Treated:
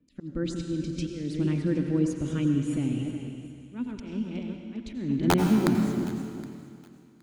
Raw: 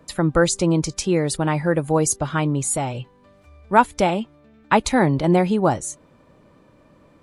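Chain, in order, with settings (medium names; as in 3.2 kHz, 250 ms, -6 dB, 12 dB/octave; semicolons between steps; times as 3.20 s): backward echo that repeats 183 ms, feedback 51%, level -10 dB; gate -41 dBFS, range -16 dB; FFT filter 170 Hz 0 dB, 250 Hz +11 dB, 780 Hz -23 dB, 2.9 kHz -3 dB, 11 kHz -25 dB; in parallel at +2.5 dB: compression 16:1, threshold -28 dBFS, peak gain reduction 21.5 dB; on the sum: slow attack 318 ms; integer overflow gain 5 dB; thinning echo 768 ms, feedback 22%, high-pass 970 Hz, level -19.5 dB; on a send at -5 dB: reverberation RT60 2.2 s, pre-delay 77 ms; on the sum: trim -9 dB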